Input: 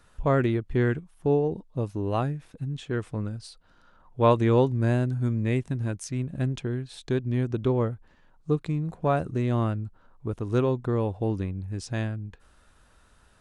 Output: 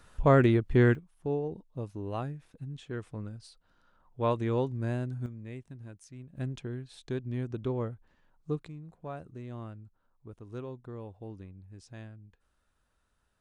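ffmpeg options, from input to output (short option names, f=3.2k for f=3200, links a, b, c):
-af "asetnsamples=n=441:p=0,asendcmd='0.95 volume volume -8.5dB;5.26 volume volume -17dB;6.37 volume volume -8dB;8.68 volume volume -16.5dB',volume=1.5dB"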